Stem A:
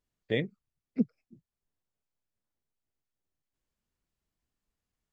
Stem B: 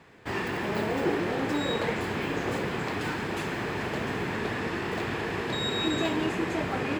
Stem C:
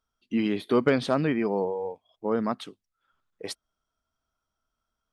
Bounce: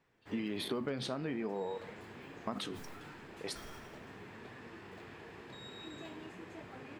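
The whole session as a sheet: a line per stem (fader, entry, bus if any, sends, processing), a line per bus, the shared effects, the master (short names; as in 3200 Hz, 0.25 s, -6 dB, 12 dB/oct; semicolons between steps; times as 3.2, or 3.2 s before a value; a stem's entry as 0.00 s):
-15.0 dB, 0.00 s, no send, dry
-15.5 dB, 0.00 s, no send, dry
-1.5 dB, 0.00 s, muted 1.78–2.47, no send, sustainer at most 55 dB/s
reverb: off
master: flange 0.44 Hz, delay 7.4 ms, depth 8.6 ms, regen +73%; compressor 12:1, threshold -33 dBFS, peak gain reduction 13 dB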